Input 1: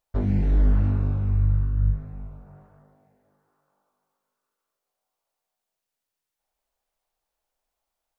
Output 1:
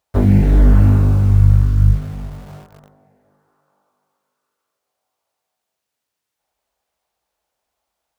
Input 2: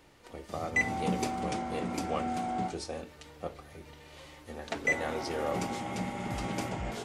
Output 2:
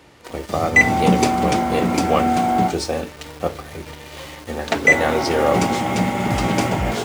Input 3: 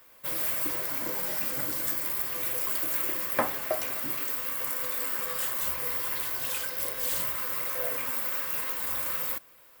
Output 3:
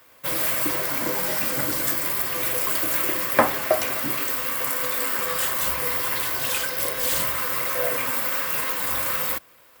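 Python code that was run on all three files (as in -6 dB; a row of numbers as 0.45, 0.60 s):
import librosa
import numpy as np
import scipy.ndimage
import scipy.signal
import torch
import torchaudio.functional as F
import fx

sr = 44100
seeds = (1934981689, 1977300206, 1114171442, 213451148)

p1 = scipy.signal.sosfilt(scipy.signal.butter(4, 51.0, 'highpass', fs=sr, output='sos'), x)
p2 = fx.high_shelf(p1, sr, hz=9500.0, db=-5.0)
p3 = fx.quant_dither(p2, sr, seeds[0], bits=8, dither='none')
p4 = p2 + F.gain(torch.from_numpy(p3), -4.0).numpy()
y = p4 * 10.0 ** (-1.5 / 20.0) / np.max(np.abs(p4))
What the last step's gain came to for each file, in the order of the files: +7.5, +11.0, +5.0 dB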